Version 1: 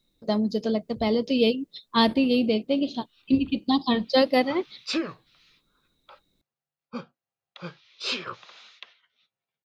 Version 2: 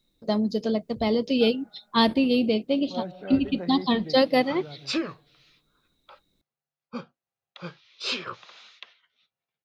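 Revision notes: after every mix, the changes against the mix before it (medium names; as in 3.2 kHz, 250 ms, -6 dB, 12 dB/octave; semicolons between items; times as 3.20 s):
second voice: unmuted; reverb: on, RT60 1.9 s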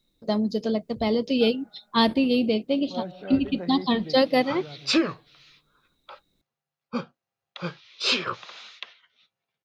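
background +6.0 dB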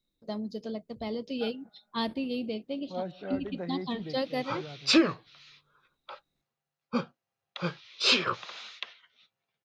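first voice -11.0 dB; second voice: send -9.0 dB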